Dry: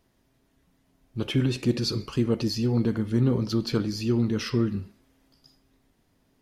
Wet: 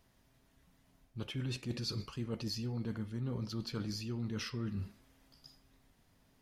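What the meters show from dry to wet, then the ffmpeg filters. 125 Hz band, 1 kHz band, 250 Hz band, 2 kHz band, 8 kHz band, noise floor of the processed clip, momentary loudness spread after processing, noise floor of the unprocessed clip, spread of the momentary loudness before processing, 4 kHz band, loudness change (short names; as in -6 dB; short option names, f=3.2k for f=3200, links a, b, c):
-12.0 dB, -11.0 dB, -15.0 dB, -10.0 dB, -8.5 dB, -70 dBFS, 8 LU, -68 dBFS, 4 LU, -9.5 dB, -13.5 dB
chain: -af "equalizer=f=340:t=o:w=1.2:g=-6.5,areverse,acompressor=threshold=-36dB:ratio=6,areverse"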